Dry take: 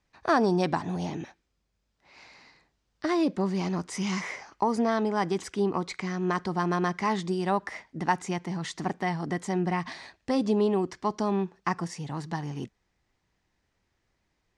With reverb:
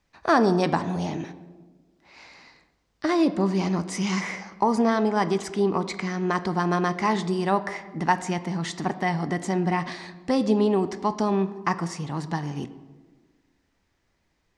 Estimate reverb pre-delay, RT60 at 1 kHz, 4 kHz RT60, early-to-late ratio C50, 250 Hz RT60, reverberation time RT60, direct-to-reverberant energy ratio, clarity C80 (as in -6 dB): 3 ms, 1.2 s, 0.80 s, 14.0 dB, 1.9 s, 1.4 s, 11.0 dB, 15.5 dB